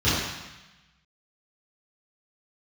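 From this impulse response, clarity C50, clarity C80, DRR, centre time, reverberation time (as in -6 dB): -1.0 dB, 1.5 dB, -15.0 dB, 90 ms, 1.0 s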